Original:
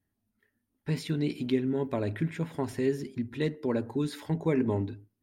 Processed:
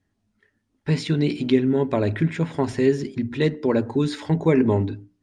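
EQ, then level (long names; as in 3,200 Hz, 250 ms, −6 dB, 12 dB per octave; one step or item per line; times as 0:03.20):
low-pass filter 7,800 Hz 24 dB per octave
mains-hum notches 60/120/180/240/300 Hz
+9.0 dB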